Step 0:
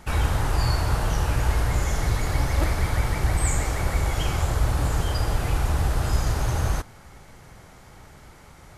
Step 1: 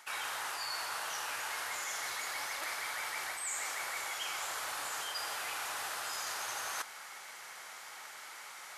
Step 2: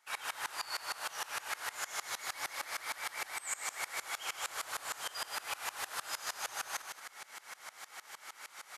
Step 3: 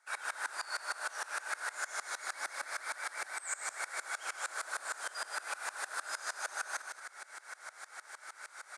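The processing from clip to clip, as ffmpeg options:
ffmpeg -i in.wav -af "highpass=1200,areverse,acompressor=threshold=-43dB:ratio=6,areverse,volume=6.5dB" out.wav
ffmpeg -i in.wav -filter_complex "[0:a]asplit=2[link_01][link_02];[link_02]aecho=0:1:178:0.473[link_03];[link_01][link_03]amix=inputs=2:normalize=0,aeval=exprs='val(0)*pow(10,-23*if(lt(mod(-6.5*n/s,1),2*abs(-6.5)/1000),1-mod(-6.5*n/s,1)/(2*abs(-6.5)/1000),(mod(-6.5*n/s,1)-2*abs(-6.5)/1000)/(1-2*abs(-6.5)/1000))/20)':channel_layout=same,volume=4.5dB" out.wav
ffmpeg -i in.wav -af "highpass=frequency=270:width=0.5412,highpass=frequency=270:width=1.3066,equalizer=frequency=610:width_type=q:width=4:gain=5,equalizer=frequency=1500:width_type=q:width=4:gain=10,equalizer=frequency=3000:width_type=q:width=4:gain=-9,equalizer=frequency=9000:width_type=q:width=4:gain=8,lowpass=frequency=9900:width=0.5412,lowpass=frequency=9900:width=1.3066,volume=-2.5dB" out.wav

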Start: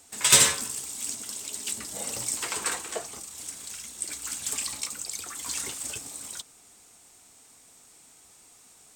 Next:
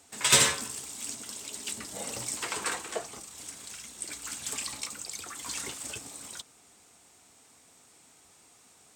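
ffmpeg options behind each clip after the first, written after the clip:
ffmpeg -i in.wav -af "highpass=61,highshelf=frequency=6000:gain=-7.5" out.wav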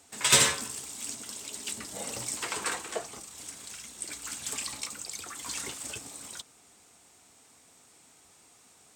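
ffmpeg -i in.wav -af anull out.wav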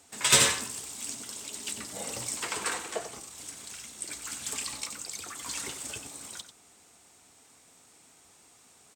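ffmpeg -i in.wav -af "aecho=1:1:93:0.282" out.wav

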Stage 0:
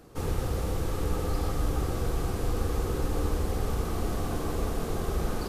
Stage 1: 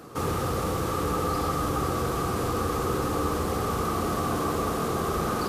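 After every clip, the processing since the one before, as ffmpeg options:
ffmpeg -i in.wav -filter_complex "[0:a]highpass=110,equalizer=frequency=1200:width=4.3:gain=9.5,asplit=2[link_01][link_02];[link_02]alimiter=level_in=7dB:limit=-24dB:level=0:latency=1,volume=-7dB,volume=-0.5dB[link_03];[link_01][link_03]amix=inputs=2:normalize=0,volume=2dB" out.wav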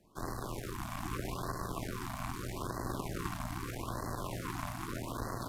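ffmpeg -i in.wav -af "aeval=exprs='0.178*(cos(1*acos(clip(val(0)/0.178,-1,1)))-cos(1*PI/2))+0.0501*(cos(3*acos(clip(val(0)/0.178,-1,1)))-cos(3*PI/2))+0.0178*(cos(4*acos(clip(val(0)/0.178,-1,1)))-cos(4*PI/2))':channel_layout=same,afreqshift=-120,afftfilt=real='re*(1-between(b*sr/1024,410*pow(2900/410,0.5+0.5*sin(2*PI*0.8*pts/sr))/1.41,410*pow(2900/410,0.5+0.5*sin(2*PI*0.8*pts/sr))*1.41))':imag='im*(1-between(b*sr/1024,410*pow(2900/410,0.5+0.5*sin(2*PI*0.8*pts/sr))/1.41,410*pow(2900/410,0.5+0.5*sin(2*PI*0.8*pts/sr))*1.41))':win_size=1024:overlap=0.75,volume=-4.5dB" out.wav

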